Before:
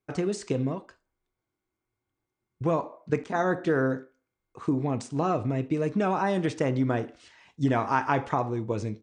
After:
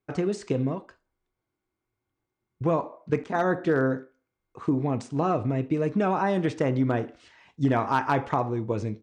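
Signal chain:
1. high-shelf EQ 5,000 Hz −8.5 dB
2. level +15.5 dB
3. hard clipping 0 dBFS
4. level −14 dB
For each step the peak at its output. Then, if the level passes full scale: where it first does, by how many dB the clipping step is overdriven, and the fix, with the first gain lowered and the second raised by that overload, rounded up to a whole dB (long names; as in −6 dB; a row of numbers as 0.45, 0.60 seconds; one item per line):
−11.0, +4.5, 0.0, −14.0 dBFS
step 2, 4.5 dB
step 2 +10.5 dB, step 4 −9 dB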